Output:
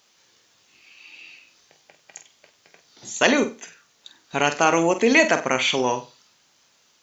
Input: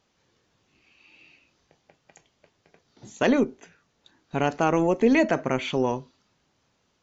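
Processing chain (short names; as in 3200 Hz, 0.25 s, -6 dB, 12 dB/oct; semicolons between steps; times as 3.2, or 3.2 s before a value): tilt +3.5 dB/oct; flutter echo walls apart 8.2 m, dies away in 0.29 s; gain +5.5 dB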